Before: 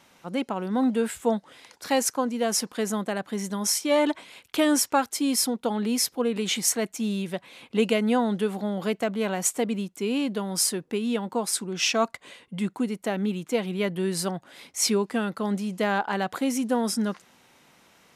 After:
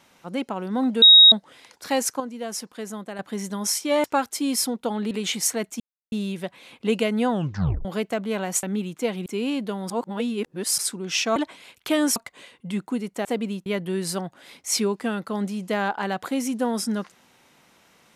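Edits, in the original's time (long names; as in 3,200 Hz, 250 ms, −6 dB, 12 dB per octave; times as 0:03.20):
0:01.02–0:01.32: beep over 3,780 Hz −7 dBFS
0:02.20–0:03.19: clip gain −6.5 dB
0:04.04–0:04.84: move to 0:12.04
0:05.91–0:06.33: remove
0:07.02: splice in silence 0.32 s
0:08.21: tape stop 0.54 s
0:09.53–0:09.94: swap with 0:13.13–0:13.76
0:10.58–0:11.46: reverse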